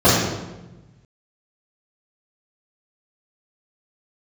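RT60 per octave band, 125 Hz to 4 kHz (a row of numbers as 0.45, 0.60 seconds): 1.8, 1.4, 1.2, 1.0, 0.90, 0.75 seconds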